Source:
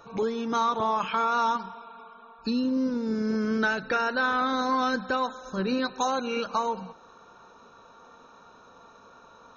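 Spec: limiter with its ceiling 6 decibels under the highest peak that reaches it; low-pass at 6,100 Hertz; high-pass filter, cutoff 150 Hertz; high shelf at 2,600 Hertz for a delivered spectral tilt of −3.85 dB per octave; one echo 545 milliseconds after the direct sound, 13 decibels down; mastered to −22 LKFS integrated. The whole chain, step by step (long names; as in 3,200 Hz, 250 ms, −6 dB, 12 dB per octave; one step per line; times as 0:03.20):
high-pass filter 150 Hz
low-pass filter 6,100 Hz
high-shelf EQ 2,600 Hz +8.5 dB
brickwall limiter −18.5 dBFS
single-tap delay 545 ms −13 dB
level +6 dB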